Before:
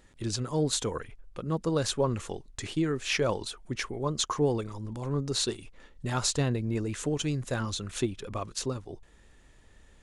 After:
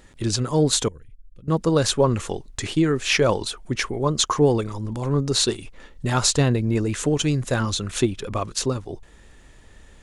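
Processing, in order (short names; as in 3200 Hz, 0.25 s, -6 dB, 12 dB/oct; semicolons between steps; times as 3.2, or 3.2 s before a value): 0.88–1.48 passive tone stack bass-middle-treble 10-0-1; gain +8.5 dB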